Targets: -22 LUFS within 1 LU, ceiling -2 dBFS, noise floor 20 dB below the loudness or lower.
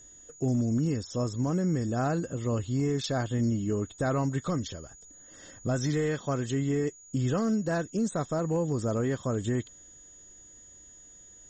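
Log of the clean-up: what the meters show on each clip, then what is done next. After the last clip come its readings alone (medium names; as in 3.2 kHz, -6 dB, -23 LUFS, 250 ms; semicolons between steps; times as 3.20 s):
clipped samples 0.2%; clipping level -20.5 dBFS; steady tone 6.8 kHz; tone level -50 dBFS; loudness -29.5 LUFS; peak level -20.5 dBFS; loudness target -22.0 LUFS
-> clip repair -20.5 dBFS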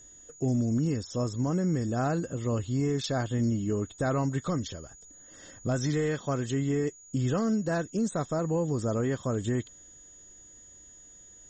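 clipped samples 0.0%; steady tone 6.8 kHz; tone level -50 dBFS
-> band-stop 6.8 kHz, Q 30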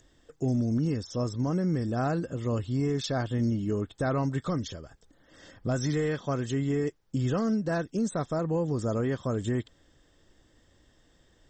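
steady tone not found; loudness -29.5 LUFS; peak level -17.5 dBFS; loudness target -22.0 LUFS
-> trim +7.5 dB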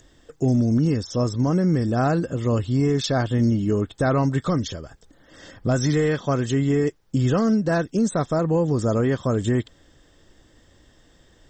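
loudness -22.0 LUFS; peak level -10.0 dBFS; noise floor -57 dBFS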